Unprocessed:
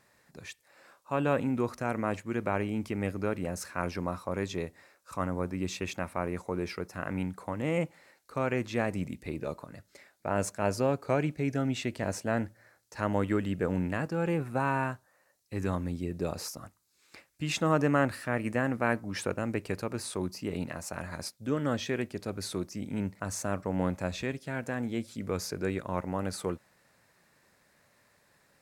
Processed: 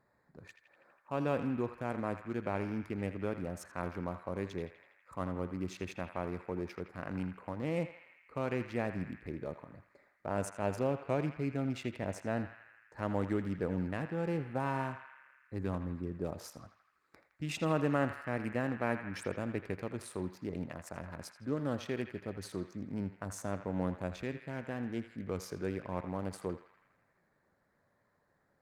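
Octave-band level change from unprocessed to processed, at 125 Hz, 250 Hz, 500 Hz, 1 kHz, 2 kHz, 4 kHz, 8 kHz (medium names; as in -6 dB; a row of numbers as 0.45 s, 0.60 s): -4.5 dB, -4.5 dB, -5.0 dB, -6.0 dB, -7.0 dB, -9.5 dB, -10.5 dB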